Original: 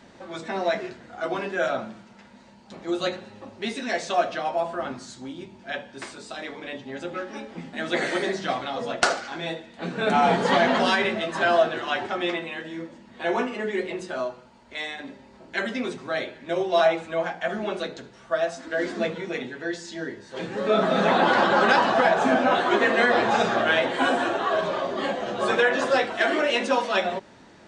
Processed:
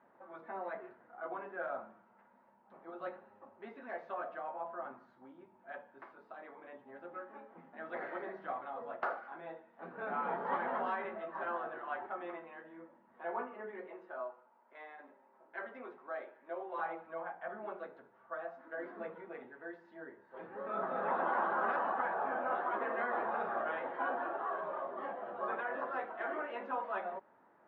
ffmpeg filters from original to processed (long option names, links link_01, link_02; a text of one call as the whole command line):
ffmpeg -i in.wav -filter_complex "[0:a]asettb=1/sr,asplit=3[link_01][link_02][link_03];[link_01]atrim=end=13.874[link_04];[link_02]atrim=start=13.87:end=16.79,asetpts=PTS-STARTPTS,afade=type=in:duration=0.004:curve=qsin,afade=type=out:start_time=2.916:duration=0.004:curve=qsin,highpass=290[link_05];[link_03]atrim=start=16.786[link_06];[link_04][link_05]acrossfade=duration=0.004:curve1=hsin:curve2=qsin[link_07];[link_07][link_06]acrossfade=duration=0.004:curve1=qsin:curve2=hsin,afftfilt=real='re*lt(hypot(re,im),0.708)':imag='im*lt(hypot(re,im),0.708)':win_size=1024:overlap=0.75,lowpass=frequency=1200:width=0.5412,lowpass=frequency=1200:width=1.3066,aderivative,volume=8dB" out.wav